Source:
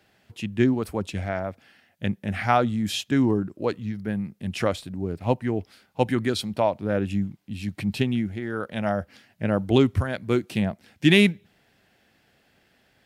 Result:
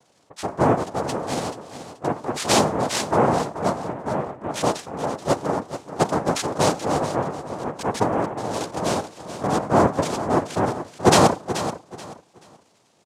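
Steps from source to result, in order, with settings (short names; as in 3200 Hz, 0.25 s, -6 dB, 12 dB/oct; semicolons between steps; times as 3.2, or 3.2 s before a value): formant sharpening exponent 2; Schroeder reverb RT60 0.38 s, combs from 31 ms, DRR 16 dB; noise vocoder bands 2; on a send: feedback echo 0.431 s, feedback 25%, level -11.5 dB; on the sum: gain +2 dB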